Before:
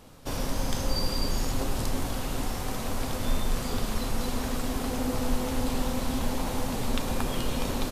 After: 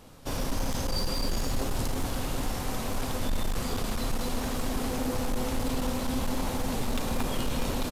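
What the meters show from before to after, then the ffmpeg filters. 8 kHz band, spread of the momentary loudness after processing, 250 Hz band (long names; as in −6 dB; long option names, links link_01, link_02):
−0.5 dB, 2 LU, −1.0 dB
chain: -af "asoftclip=type=hard:threshold=-23.5dB,aecho=1:1:223:0.282"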